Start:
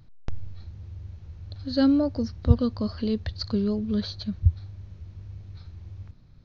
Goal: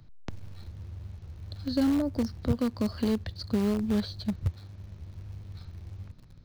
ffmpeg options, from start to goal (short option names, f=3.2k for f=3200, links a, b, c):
-filter_complex "[0:a]acrossover=split=120|450[a][b][c];[a]acompressor=threshold=-42dB:ratio=4[d];[b]acompressor=threshold=-27dB:ratio=4[e];[c]acompressor=threshold=-41dB:ratio=4[f];[d][e][f]amix=inputs=3:normalize=0,asplit=2[g][h];[h]acrusher=bits=5:dc=4:mix=0:aa=0.000001,volume=-11dB[i];[g][i]amix=inputs=2:normalize=0"